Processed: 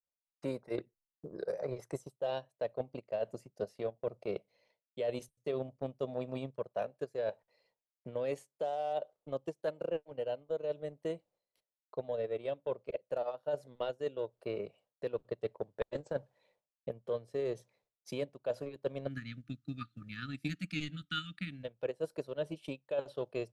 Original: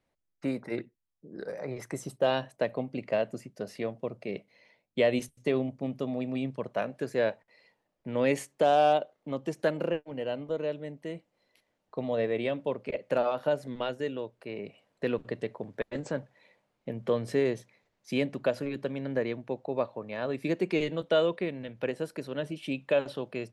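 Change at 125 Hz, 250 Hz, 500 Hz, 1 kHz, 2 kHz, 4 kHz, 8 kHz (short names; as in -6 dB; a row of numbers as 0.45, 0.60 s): -6.5 dB, -10.5 dB, -7.0 dB, -11.0 dB, -10.5 dB, -7.0 dB, under -10 dB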